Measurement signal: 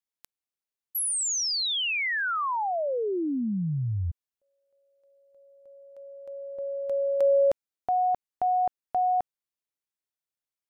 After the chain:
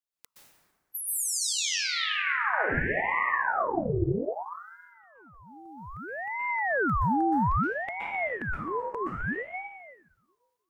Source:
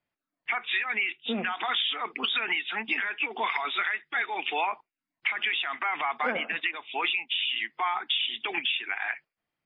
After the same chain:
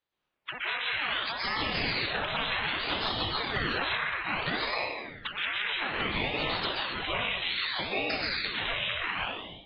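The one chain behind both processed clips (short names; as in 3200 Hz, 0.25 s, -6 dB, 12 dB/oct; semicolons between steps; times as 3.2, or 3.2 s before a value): bin magnitudes rounded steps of 30 dB; compressor 10:1, threshold -34 dBFS; notches 50/100/150/200 Hz; plate-style reverb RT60 1.5 s, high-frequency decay 0.55×, pre-delay 0.11 s, DRR -7.5 dB; AGC gain up to 3 dB; notch 780 Hz, Q 12; ring modulator with a swept carrier 880 Hz, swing 75%, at 0.62 Hz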